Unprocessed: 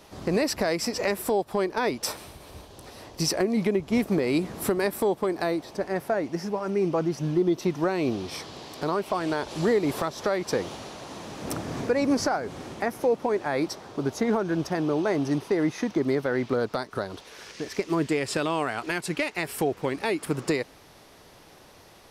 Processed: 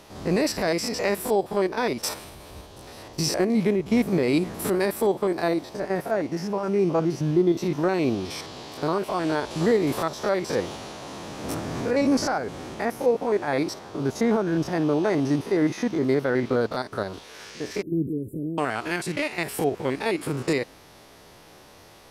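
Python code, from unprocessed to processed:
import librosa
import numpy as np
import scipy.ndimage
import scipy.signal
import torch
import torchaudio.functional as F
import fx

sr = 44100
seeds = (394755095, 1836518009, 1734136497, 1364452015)

y = fx.spec_steps(x, sr, hold_ms=50)
y = fx.cheby2_bandstop(y, sr, low_hz=1000.0, high_hz=5800.0, order=4, stop_db=60, at=(17.82, 18.58))
y = y * librosa.db_to_amplitude(3.5)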